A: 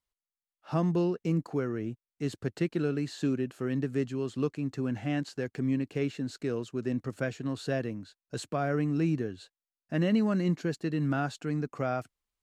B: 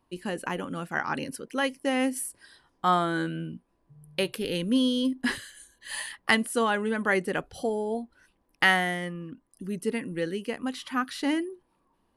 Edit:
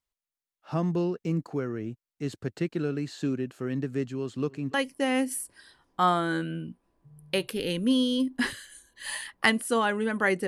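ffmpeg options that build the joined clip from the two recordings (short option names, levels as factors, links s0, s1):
-filter_complex "[0:a]asplit=3[s0][s1][s2];[s0]afade=t=out:st=4.34:d=0.02[s3];[s1]asplit=2[s4][s5];[s5]adelay=290,lowpass=f=3300:p=1,volume=0.075,asplit=2[s6][s7];[s7]adelay=290,lowpass=f=3300:p=1,volume=0.53,asplit=2[s8][s9];[s9]adelay=290,lowpass=f=3300:p=1,volume=0.53,asplit=2[s10][s11];[s11]adelay=290,lowpass=f=3300:p=1,volume=0.53[s12];[s4][s6][s8][s10][s12]amix=inputs=5:normalize=0,afade=t=in:st=4.34:d=0.02,afade=t=out:st=4.74:d=0.02[s13];[s2]afade=t=in:st=4.74:d=0.02[s14];[s3][s13][s14]amix=inputs=3:normalize=0,apad=whole_dur=10.47,atrim=end=10.47,atrim=end=4.742[s15];[1:a]atrim=start=1.588:end=7.32[s16];[s15][s16]acrossfade=d=0.004:c1=hsin:c2=hsin"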